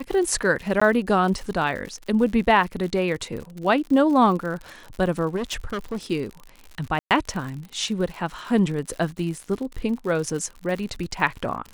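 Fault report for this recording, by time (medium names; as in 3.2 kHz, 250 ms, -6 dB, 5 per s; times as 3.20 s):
crackle 89 per s -31 dBFS
0.80–0.81 s: dropout 15 ms
5.36–5.97 s: clipped -24 dBFS
6.99–7.11 s: dropout 118 ms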